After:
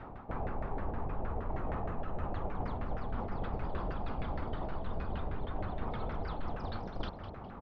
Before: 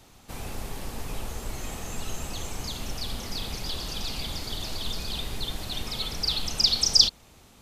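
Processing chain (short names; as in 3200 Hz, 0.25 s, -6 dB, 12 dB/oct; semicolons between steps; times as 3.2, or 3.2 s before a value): one-sided fold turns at -17 dBFS; LPF 5700 Hz; high shelf 3100 Hz -10.5 dB; reverse; compressor 6:1, threshold -41 dBFS, peak gain reduction 21 dB; reverse; LFO low-pass saw down 6.4 Hz 610–1700 Hz; frequency-shifting echo 0.205 s, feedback 37%, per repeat -99 Hz, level -11.5 dB; gain +8 dB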